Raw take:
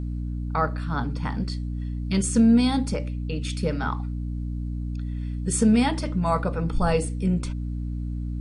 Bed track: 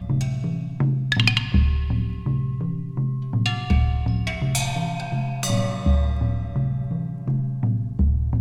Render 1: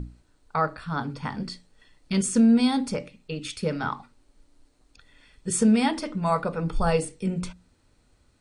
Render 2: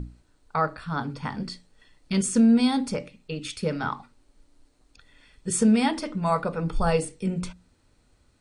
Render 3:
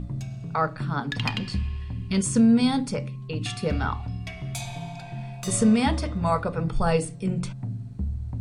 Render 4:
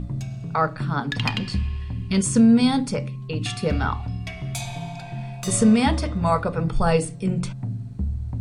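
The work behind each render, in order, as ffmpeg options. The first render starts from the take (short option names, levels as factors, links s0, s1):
-af "bandreject=f=60:t=h:w=6,bandreject=f=120:t=h:w=6,bandreject=f=180:t=h:w=6,bandreject=f=240:t=h:w=6,bandreject=f=300:t=h:w=6"
-af anull
-filter_complex "[1:a]volume=0.316[s0];[0:a][s0]amix=inputs=2:normalize=0"
-af "volume=1.41"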